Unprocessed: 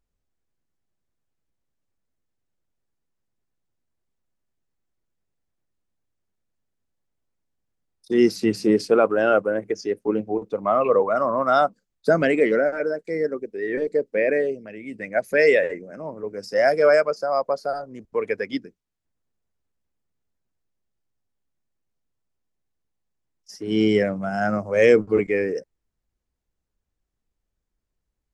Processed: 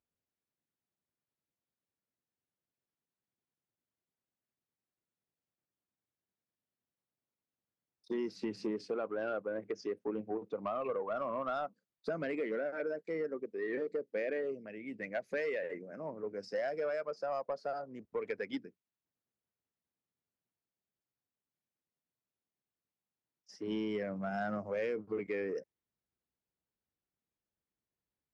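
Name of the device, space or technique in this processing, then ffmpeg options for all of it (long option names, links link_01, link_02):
AM radio: -af "highpass=120,lowpass=4400,acompressor=threshold=-23dB:ratio=10,asoftclip=type=tanh:threshold=-18.5dB,volume=-8dB"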